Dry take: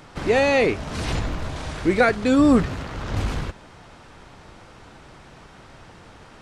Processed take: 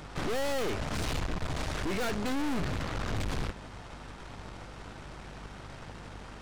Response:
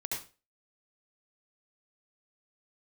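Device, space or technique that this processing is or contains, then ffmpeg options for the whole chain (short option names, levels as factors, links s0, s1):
valve amplifier with mains hum: -af "aeval=exprs='(tanh(56.2*val(0)+0.8)-tanh(0.8))/56.2':c=same,aeval=exprs='val(0)+0.00251*(sin(2*PI*50*n/s)+sin(2*PI*2*50*n/s)/2+sin(2*PI*3*50*n/s)/3+sin(2*PI*4*50*n/s)/4+sin(2*PI*5*50*n/s)/5)':c=same,volume=1.58"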